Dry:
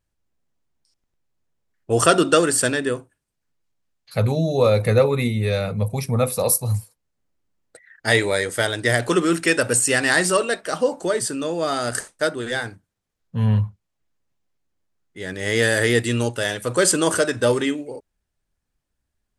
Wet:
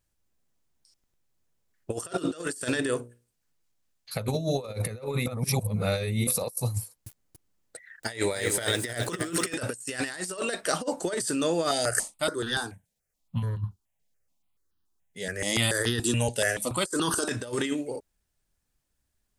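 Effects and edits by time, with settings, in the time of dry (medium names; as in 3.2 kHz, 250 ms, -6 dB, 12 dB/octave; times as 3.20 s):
1.94–4.76 s: hum notches 60/120/180/240/300/360/420/480/540/600 Hz
5.26–6.27 s: reverse
6.78–9.54 s: bit-crushed delay 283 ms, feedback 35%, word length 7-bit, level -9 dB
11.71–17.29 s: stepped phaser 7 Hz 320–2200 Hz
whole clip: treble shelf 4.6 kHz +8 dB; compressor with a negative ratio -23 dBFS, ratio -0.5; trim -5 dB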